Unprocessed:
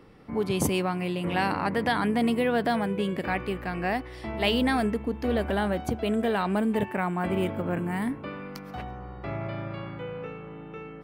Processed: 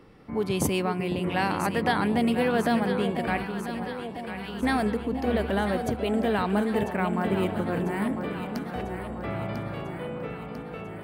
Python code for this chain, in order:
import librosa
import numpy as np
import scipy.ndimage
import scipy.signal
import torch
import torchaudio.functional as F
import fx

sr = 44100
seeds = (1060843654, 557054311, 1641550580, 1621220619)

y = fx.tone_stack(x, sr, knobs='6-0-2', at=(3.44, 4.63))
y = fx.echo_alternate(y, sr, ms=498, hz=820.0, feedback_pct=79, wet_db=-7.0)